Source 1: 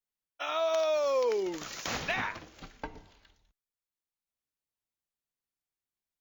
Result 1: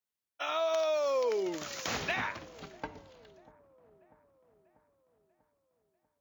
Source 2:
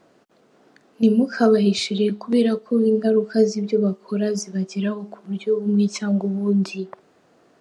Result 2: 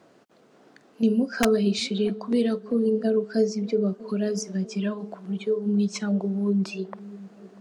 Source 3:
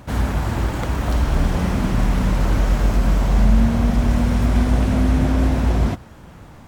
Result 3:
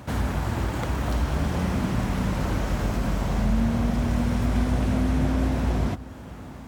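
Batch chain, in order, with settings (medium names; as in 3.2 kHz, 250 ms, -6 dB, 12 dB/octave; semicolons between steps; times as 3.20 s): high-pass 56 Hz 24 dB/octave; in parallel at +2 dB: compression, threshold -29 dBFS; on the sum: integer overflow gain 4.5 dB; feedback echo behind a low-pass 642 ms, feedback 56%, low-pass 830 Hz, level -19 dB; trim -7 dB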